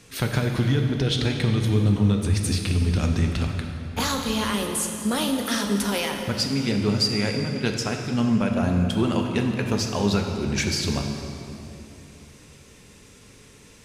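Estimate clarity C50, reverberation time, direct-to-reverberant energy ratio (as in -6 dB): 4.0 dB, 2.9 s, 2.5 dB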